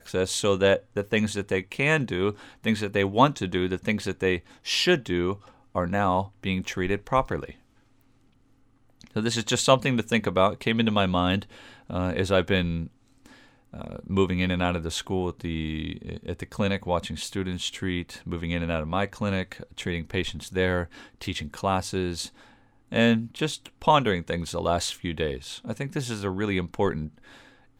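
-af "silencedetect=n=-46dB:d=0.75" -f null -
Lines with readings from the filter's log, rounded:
silence_start: 8.01
silence_end: 9.01 | silence_duration: 1.00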